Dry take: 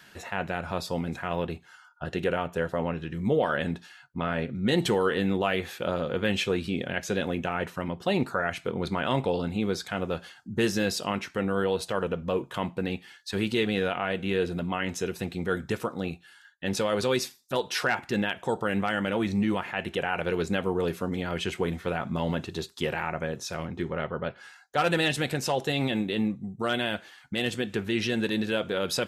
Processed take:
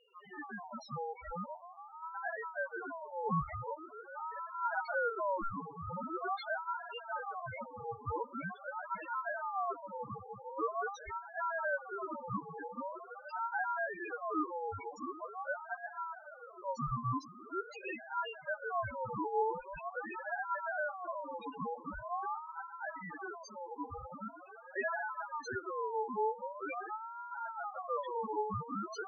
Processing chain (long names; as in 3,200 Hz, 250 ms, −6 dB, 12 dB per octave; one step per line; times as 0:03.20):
echo that builds up and dies away 154 ms, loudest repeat 5, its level −17 dB
spectral peaks only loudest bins 1
ring modulator whose carrier an LFO sweeps 910 Hz, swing 30%, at 0.44 Hz
level +1 dB